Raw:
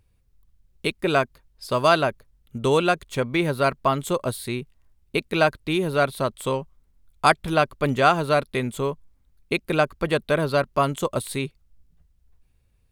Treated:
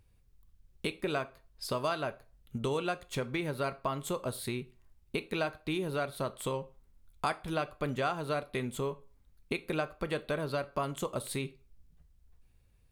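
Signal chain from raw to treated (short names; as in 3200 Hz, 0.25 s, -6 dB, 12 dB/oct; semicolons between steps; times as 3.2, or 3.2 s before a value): compressor 3:1, threshold -32 dBFS, peak gain reduction 15.5 dB; on a send: reverb RT60 0.35 s, pre-delay 8 ms, DRR 12 dB; on the sum: gain -1.5 dB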